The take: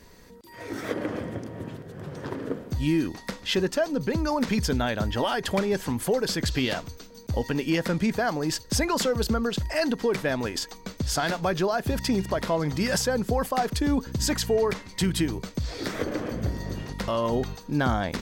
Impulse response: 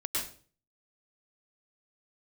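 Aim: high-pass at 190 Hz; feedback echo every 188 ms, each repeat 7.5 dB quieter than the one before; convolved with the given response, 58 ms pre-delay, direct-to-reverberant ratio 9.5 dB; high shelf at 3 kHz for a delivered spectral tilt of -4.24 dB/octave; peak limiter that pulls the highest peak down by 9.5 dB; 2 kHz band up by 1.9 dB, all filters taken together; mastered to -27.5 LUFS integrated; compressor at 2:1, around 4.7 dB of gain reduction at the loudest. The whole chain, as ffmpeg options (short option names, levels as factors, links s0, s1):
-filter_complex "[0:a]highpass=190,equalizer=f=2000:t=o:g=4,highshelf=f=3000:g=-4.5,acompressor=threshold=0.0355:ratio=2,alimiter=limit=0.0631:level=0:latency=1,aecho=1:1:188|376|564|752|940:0.422|0.177|0.0744|0.0312|0.0131,asplit=2[s0][s1];[1:a]atrim=start_sample=2205,adelay=58[s2];[s1][s2]afir=irnorm=-1:irlink=0,volume=0.188[s3];[s0][s3]amix=inputs=2:normalize=0,volume=1.88"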